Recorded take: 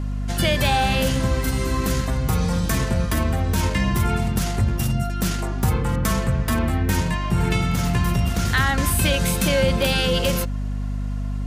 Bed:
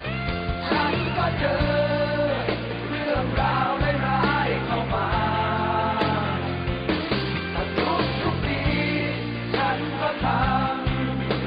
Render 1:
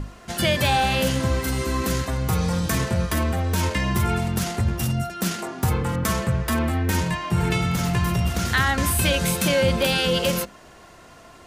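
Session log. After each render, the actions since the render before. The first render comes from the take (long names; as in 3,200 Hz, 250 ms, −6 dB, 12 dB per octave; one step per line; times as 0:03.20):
mains-hum notches 50/100/150/200/250/300 Hz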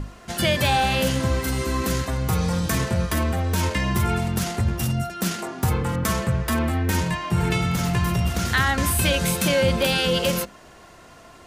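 no processing that can be heard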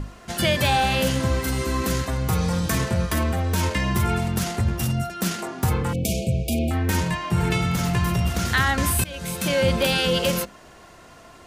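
0:05.93–0:06.71: linear-phase brick-wall band-stop 790–2,200 Hz
0:09.04–0:09.67: fade in, from −22 dB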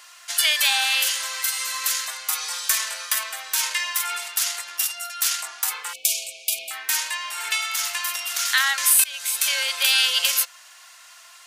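Bessel high-pass filter 1,400 Hz, order 4
high-shelf EQ 2,400 Hz +10 dB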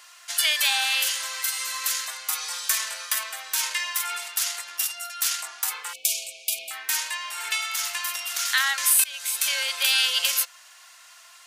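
level −2.5 dB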